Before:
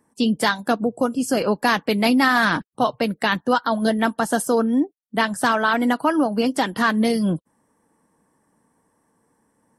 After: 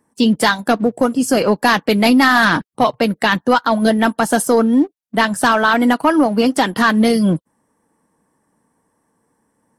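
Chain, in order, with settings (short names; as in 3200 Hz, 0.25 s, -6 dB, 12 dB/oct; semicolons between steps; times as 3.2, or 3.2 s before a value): sample leveller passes 1; gain +2.5 dB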